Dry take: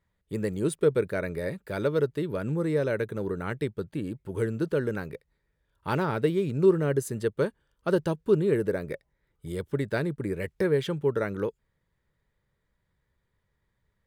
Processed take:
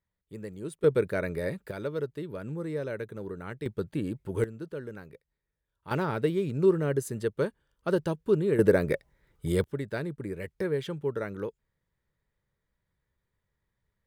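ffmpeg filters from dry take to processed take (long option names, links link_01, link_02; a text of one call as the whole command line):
ffmpeg -i in.wav -af "asetnsamples=nb_out_samples=441:pad=0,asendcmd='0.84 volume volume 0dB;1.71 volume volume -7dB;3.66 volume volume 1dB;4.44 volume volume -11dB;5.91 volume volume -2dB;8.59 volume volume 7dB;9.64 volume volume -5dB',volume=-10.5dB" out.wav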